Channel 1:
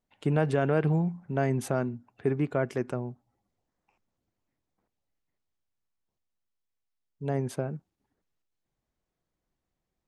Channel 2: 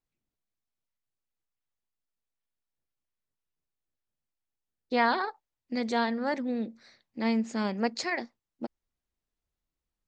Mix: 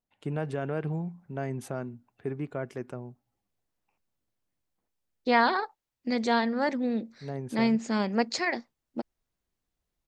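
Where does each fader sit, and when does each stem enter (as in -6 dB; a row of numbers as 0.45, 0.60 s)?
-6.5, +2.5 dB; 0.00, 0.35 s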